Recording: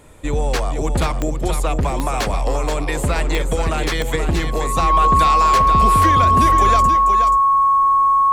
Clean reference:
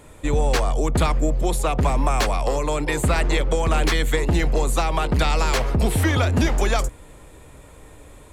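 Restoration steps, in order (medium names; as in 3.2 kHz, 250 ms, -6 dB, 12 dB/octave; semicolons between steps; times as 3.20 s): de-click; band-stop 1.1 kHz, Q 30; inverse comb 480 ms -7 dB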